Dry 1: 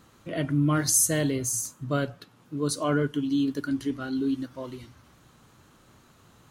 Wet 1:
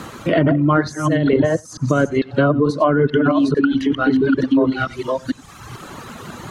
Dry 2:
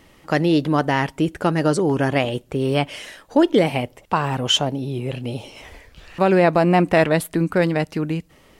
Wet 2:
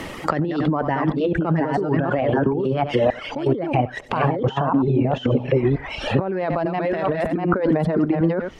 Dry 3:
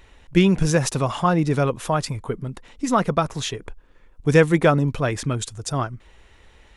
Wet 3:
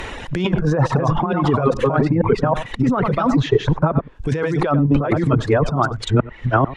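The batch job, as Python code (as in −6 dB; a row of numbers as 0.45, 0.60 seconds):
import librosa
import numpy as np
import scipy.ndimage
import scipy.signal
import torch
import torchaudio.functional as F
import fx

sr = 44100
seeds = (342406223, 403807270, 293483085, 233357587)

p1 = fx.reverse_delay(x, sr, ms=443, wet_db=-1.5)
p2 = fx.dynamic_eq(p1, sr, hz=2400.0, q=2.3, threshold_db=-39.0, ratio=4.0, max_db=-4)
p3 = 10.0 ** (-12.0 / 20.0) * np.tanh(p2 / 10.0 ** (-12.0 / 20.0))
p4 = p2 + (p3 * 10.0 ** (-9.0 / 20.0))
p5 = fx.dereverb_blind(p4, sr, rt60_s=1.3)
p6 = p5 + 10.0 ** (-23.5 / 20.0) * np.pad(p5, (int(92 * sr / 1000.0), 0))[:len(p5)]
p7 = fx.over_compress(p6, sr, threshold_db=-25.0, ratio=-1.0)
p8 = fx.env_lowpass_down(p7, sr, base_hz=1300.0, full_db=-21.0)
p9 = fx.low_shelf(p8, sr, hz=110.0, db=-6.5)
p10 = fx.band_squash(p9, sr, depth_pct=40)
y = librosa.util.normalize(p10) * 10.0 ** (-3 / 20.0)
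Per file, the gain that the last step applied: +12.0, +5.0, +10.0 decibels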